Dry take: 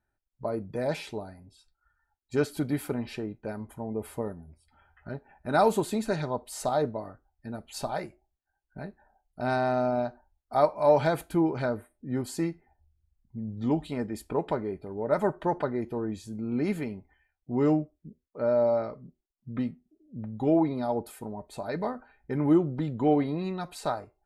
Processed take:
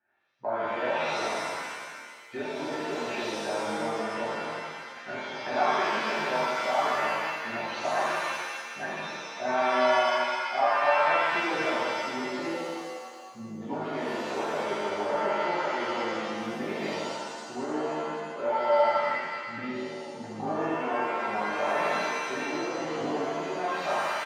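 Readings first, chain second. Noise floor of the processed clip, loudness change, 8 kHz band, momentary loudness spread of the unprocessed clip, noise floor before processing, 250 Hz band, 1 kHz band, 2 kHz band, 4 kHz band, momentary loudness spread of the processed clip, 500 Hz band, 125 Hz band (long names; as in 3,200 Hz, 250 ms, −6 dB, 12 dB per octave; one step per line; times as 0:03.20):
−43 dBFS, +0.5 dB, +2.5 dB, 17 LU, −81 dBFS, −6.5 dB, +5.5 dB, +11.5 dB, +10.0 dB, 12 LU, −0.5 dB, −12.5 dB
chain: downward compressor 6 to 1, threshold −36 dBFS, peak gain reduction 18.5 dB
high-shelf EQ 2,200 Hz −11 dB
double-tracking delay 19 ms −11 dB
rotating-speaker cabinet horn 8 Hz, later 0.8 Hz, at 0:19.31
loudspeaker in its box 440–4,100 Hz, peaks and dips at 450 Hz −7 dB, 750 Hz +4 dB, 1,800 Hz +9 dB, 2,600 Hz +6 dB, 3,800 Hz −4 dB
reverb with rising layers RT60 1.6 s, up +7 semitones, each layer −2 dB, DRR −9.5 dB
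level +5.5 dB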